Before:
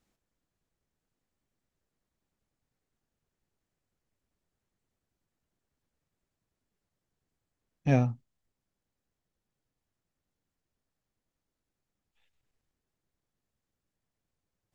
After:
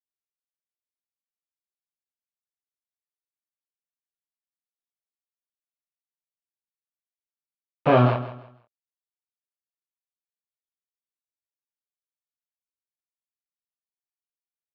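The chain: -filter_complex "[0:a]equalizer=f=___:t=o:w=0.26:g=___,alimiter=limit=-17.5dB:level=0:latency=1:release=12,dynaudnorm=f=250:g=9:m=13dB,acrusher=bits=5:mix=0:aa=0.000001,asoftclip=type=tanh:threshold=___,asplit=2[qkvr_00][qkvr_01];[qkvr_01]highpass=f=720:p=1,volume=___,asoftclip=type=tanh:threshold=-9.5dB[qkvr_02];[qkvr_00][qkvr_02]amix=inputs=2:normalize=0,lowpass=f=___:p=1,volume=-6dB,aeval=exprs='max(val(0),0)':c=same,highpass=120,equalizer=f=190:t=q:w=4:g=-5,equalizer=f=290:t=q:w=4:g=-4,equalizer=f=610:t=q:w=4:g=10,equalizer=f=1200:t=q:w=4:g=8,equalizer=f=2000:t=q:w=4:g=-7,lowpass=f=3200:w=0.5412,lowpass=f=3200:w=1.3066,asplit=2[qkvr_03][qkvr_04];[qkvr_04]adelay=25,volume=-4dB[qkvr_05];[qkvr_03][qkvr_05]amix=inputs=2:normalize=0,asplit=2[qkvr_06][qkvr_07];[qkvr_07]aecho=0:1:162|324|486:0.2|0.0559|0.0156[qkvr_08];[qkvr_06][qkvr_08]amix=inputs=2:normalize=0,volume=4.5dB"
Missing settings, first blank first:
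370, 8, -9dB, 16dB, 2100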